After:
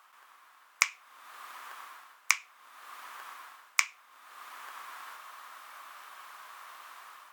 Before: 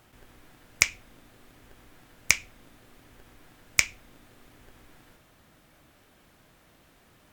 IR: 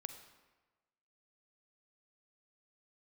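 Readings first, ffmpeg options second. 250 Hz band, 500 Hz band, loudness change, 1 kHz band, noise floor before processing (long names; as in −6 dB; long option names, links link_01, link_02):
below −20 dB, −8.5 dB, −8.0 dB, +7.0 dB, −60 dBFS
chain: -af "highpass=frequency=1100:width_type=q:width=4.9,dynaudnorm=framelen=170:gausssize=5:maxgain=12dB,volume=-3.5dB"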